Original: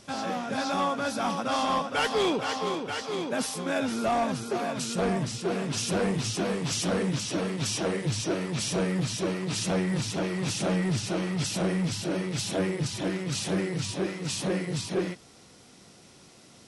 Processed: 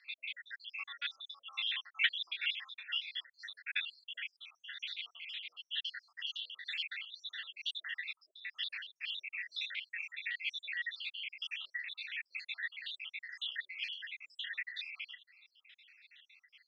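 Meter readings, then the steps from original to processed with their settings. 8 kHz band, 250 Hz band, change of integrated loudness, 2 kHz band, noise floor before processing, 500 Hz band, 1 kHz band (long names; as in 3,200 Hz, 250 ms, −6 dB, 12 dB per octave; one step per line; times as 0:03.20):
below −35 dB, below −40 dB, −11.0 dB, −3.0 dB, −54 dBFS, below −40 dB, −29.0 dB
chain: time-frequency cells dropped at random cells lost 76%
Chebyshev band-pass filter 1,800–3,600 Hz, order 3
level +6 dB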